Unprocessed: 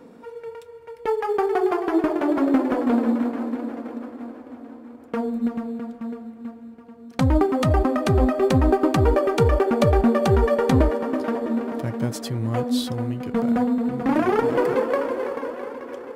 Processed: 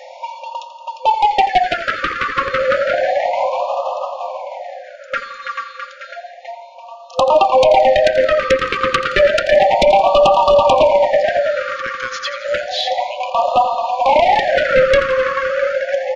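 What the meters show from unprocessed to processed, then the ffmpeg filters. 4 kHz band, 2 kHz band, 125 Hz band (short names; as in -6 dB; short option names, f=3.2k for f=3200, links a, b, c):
+14.5 dB, +14.5 dB, -12.0 dB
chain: -filter_complex "[0:a]acrossover=split=2900[a][b];[b]acompressor=threshold=-53dB:ratio=4:attack=1:release=60[c];[a][c]amix=inputs=2:normalize=0,afftfilt=real='re*between(b*sr/4096,510,7100)':imag='im*between(b*sr/4096,510,7100)':win_size=4096:overlap=0.75,asplit=2[d][e];[e]acompressor=threshold=-33dB:ratio=8,volume=-1dB[f];[d][f]amix=inputs=2:normalize=0,aeval=exprs='0.501*sin(PI/2*3.98*val(0)/0.501)':c=same,asplit=2[g][h];[h]aecho=0:1:85|170|255|340|425|510:0.224|0.13|0.0753|0.0437|0.0253|0.0147[i];[g][i]amix=inputs=2:normalize=0,afftfilt=real='re*(1-between(b*sr/1024,750*pow(1800/750,0.5+0.5*sin(2*PI*0.31*pts/sr))/1.41,750*pow(1800/750,0.5+0.5*sin(2*PI*0.31*pts/sr))*1.41))':imag='im*(1-between(b*sr/1024,750*pow(1800/750,0.5+0.5*sin(2*PI*0.31*pts/sr))/1.41,750*pow(1800/750,0.5+0.5*sin(2*PI*0.31*pts/sr))*1.41))':win_size=1024:overlap=0.75"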